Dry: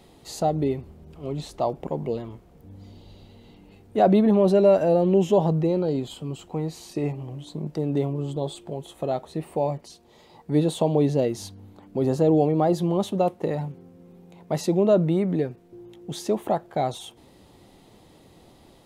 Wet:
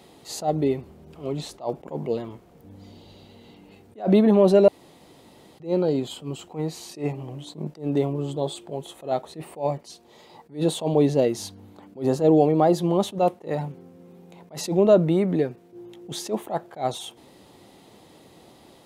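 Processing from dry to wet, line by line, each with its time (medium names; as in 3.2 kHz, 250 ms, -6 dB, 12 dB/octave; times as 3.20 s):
4.68–5.60 s: room tone
whole clip: high-pass 190 Hz 6 dB/octave; attacks held to a fixed rise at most 220 dB/s; trim +3.5 dB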